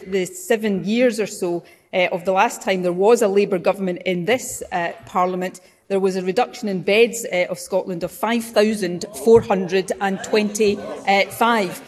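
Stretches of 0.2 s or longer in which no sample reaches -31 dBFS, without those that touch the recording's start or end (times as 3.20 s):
1.59–1.93 s
5.57–5.90 s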